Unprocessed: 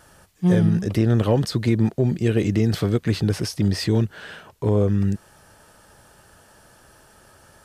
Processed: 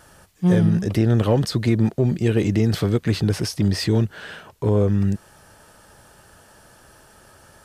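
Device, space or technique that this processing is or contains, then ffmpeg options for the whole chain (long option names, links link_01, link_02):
parallel distortion: -filter_complex "[0:a]asplit=2[link_01][link_02];[link_02]asoftclip=type=hard:threshold=-23dB,volume=-13dB[link_03];[link_01][link_03]amix=inputs=2:normalize=0"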